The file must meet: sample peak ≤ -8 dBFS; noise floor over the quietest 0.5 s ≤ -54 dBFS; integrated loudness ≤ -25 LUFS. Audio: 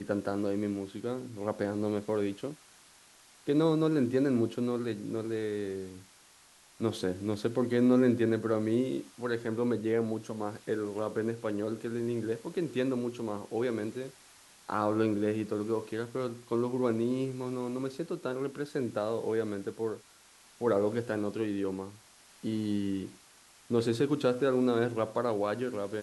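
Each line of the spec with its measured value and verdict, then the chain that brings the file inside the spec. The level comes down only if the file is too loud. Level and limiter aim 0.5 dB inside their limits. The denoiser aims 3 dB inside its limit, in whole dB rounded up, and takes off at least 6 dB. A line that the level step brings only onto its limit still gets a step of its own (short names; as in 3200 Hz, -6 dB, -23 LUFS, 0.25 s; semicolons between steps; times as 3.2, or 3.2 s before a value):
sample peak -14.0 dBFS: OK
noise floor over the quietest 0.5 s -59 dBFS: OK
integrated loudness -32.0 LUFS: OK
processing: none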